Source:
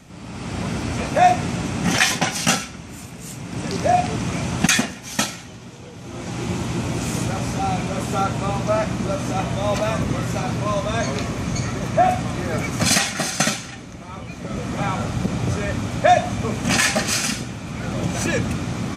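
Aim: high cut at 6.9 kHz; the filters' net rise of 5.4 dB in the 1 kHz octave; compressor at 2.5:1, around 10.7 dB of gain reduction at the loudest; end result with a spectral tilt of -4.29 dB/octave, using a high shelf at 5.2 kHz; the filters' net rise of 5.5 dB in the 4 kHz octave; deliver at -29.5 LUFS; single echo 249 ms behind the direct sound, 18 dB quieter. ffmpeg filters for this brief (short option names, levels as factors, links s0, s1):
-af "lowpass=6900,equalizer=f=1000:t=o:g=8.5,equalizer=f=4000:t=o:g=9,highshelf=f=5200:g=-4.5,acompressor=threshold=0.0794:ratio=2.5,aecho=1:1:249:0.126,volume=0.562"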